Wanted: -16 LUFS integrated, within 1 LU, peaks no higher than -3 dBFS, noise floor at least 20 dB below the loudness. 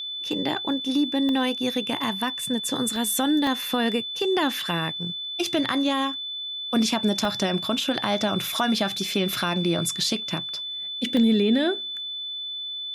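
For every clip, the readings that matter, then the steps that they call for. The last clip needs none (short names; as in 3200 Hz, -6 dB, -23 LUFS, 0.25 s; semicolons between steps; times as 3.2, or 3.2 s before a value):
dropouts 7; longest dropout 1.1 ms; steady tone 3500 Hz; tone level -30 dBFS; loudness -24.5 LUFS; peak -8.5 dBFS; loudness target -16.0 LUFS
-> interpolate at 1.29/2.96/3.47/4.6/7.25/8.49/11.17, 1.1 ms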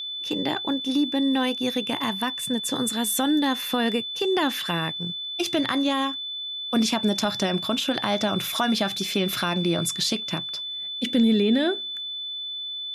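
dropouts 0; steady tone 3500 Hz; tone level -30 dBFS
-> notch 3500 Hz, Q 30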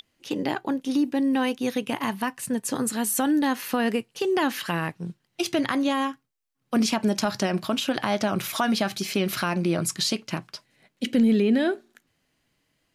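steady tone none; loudness -25.5 LUFS; peak -9.0 dBFS; loudness target -16.0 LUFS
-> gain +9.5 dB; limiter -3 dBFS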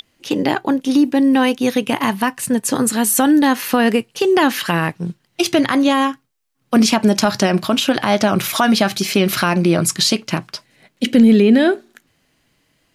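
loudness -16.0 LUFS; peak -3.0 dBFS; noise floor -65 dBFS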